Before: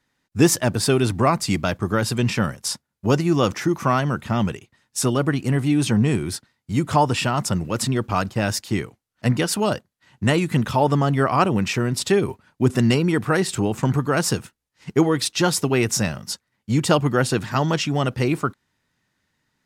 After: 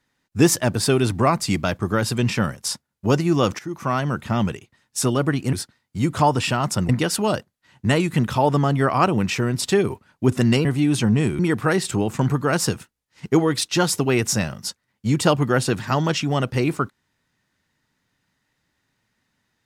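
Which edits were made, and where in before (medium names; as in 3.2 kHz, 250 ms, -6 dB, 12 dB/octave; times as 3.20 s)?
3.59–4.32 s: fade in equal-power, from -16.5 dB
5.53–6.27 s: move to 13.03 s
7.63–9.27 s: delete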